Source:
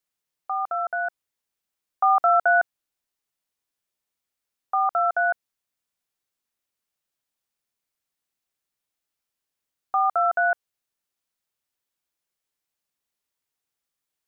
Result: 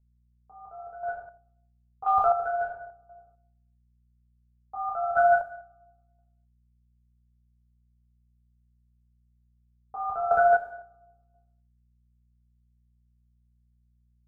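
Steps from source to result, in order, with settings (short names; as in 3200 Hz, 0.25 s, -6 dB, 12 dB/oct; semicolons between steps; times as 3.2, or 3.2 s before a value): level quantiser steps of 12 dB; on a send: dark delay 0.285 s, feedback 32%, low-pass 1500 Hz, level -23 dB; on the sum: AGC gain up to 4 dB; low shelf 400 Hz +12 dB; expander -53 dBFS; band shelf 870 Hz -15 dB; non-linear reverb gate 0.31 s falling, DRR -6.5 dB; chopper 0.97 Hz, depth 65%, duty 25%; hum 60 Hz, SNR 35 dB; fixed phaser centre 790 Hz, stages 4; low-pass opened by the level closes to 670 Hz, open at -28.5 dBFS; gain +7.5 dB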